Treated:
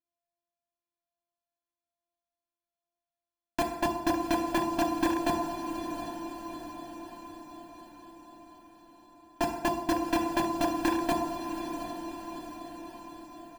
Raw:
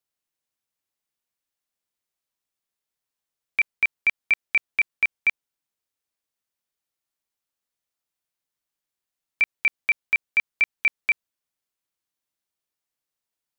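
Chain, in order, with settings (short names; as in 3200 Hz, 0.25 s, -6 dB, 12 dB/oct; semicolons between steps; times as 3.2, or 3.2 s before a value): sample sorter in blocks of 128 samples; bell 1700 Hz -15 dB 2.4 oct; sample leveller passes 2; flange 1.2 Hz, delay 3.6 ms, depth 1.4 ms, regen -34%; on a send: diffused feedback echo 0.728 s, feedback 57%, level -9 dB; on the sum: FDN reverb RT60 1.2 s, low-frequency decay 0.8×, high-frequency decay 0.65×, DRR 3 dB; in parallel at -11.5 dB: wrapped overs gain 22 dB; on the sum: tone controls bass -11 dB, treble -13 dB; comb 1.2 ms, depth 97%; gain +3 dB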